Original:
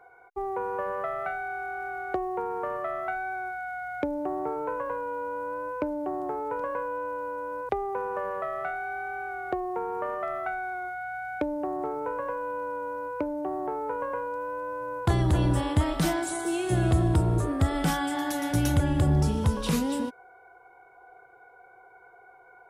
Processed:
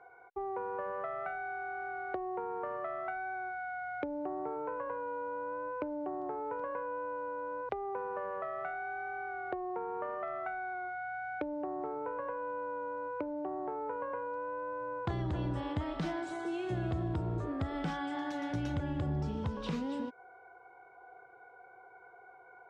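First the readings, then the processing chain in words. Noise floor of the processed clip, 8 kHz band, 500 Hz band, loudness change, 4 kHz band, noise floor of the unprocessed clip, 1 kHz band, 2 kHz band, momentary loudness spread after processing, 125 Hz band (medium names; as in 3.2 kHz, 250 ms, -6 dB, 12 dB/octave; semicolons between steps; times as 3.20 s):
-57 dBFS, under -20 dB, -7.0 dB, -8.5 dB, -12.0 dB, -54 dBFS, -6.5 dB, -6.5 dB, 11 LU, -11.5 dB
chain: bass shelf 62 Hz -9.5 dB; compression 2:1, threshold -36 dBFS, peak gain reduction 9 dB; distance through air 170 m; trim -1.5 dB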